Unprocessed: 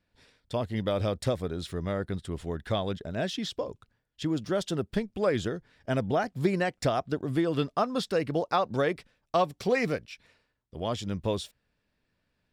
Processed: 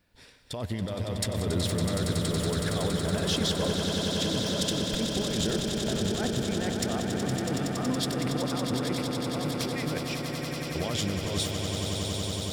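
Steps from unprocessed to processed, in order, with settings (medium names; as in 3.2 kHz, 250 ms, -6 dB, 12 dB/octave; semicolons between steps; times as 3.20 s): treble shelf 7.7 kHz +8.5 dB; compressor with a negative ratio -34 dBFS, ratio -1; on a send: echo with a slow build-up 93 ms, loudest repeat 8, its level -8 dB; on the sum: trim +1 dB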